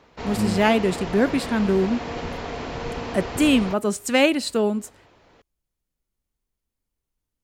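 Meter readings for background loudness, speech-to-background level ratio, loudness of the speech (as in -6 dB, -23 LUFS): -31.5 LUFS, 9.5 dB, -22.0 LUFS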